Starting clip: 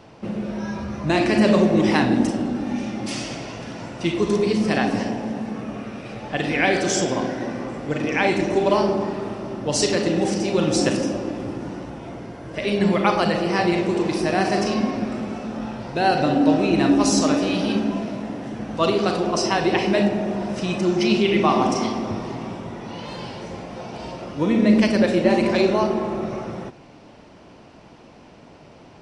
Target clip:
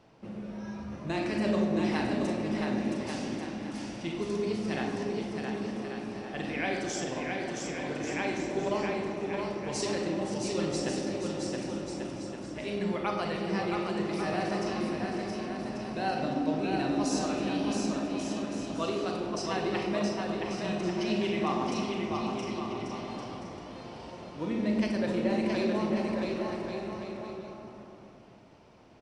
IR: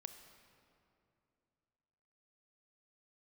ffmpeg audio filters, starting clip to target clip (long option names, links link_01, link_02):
-filter_complex "[0:a]aecho=1:1:670|1139|1467|1697|1858:0.631|0.398|0.251|0.158|0.1[link_01];[1:a]atrim=start_sample=2205,asetrate=79380,aresample=44100[link_02];[link_01][link_02]afir=irnorm=-1:irlink=0,volume=-2.5dB"